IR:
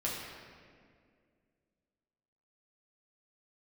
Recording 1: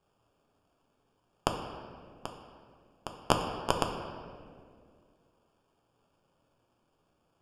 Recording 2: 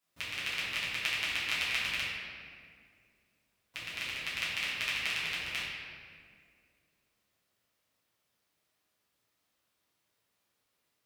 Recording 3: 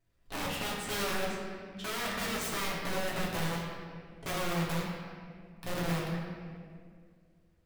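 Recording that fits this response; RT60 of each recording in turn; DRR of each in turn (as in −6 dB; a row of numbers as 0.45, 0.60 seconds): 3; 2.1, 2.1, 2.1 seconds; 2.5, −10.5, −6.0 decibels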